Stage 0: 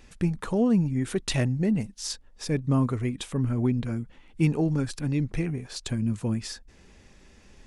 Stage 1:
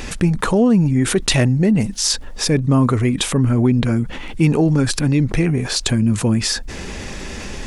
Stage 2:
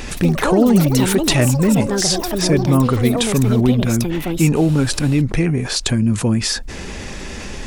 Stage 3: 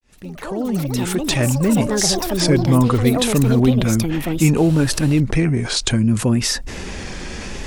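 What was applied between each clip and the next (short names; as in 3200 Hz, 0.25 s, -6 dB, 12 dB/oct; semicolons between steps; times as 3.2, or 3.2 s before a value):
low shelf 190 Hz -3 dB; fast leveller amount 50%; gain +8.5 dB
echoes that change speed 95 ms, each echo +7 st, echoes 3, each echo -6 dB
opening faded in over 2.04 s; vibrato 0.66 Hz 94 cents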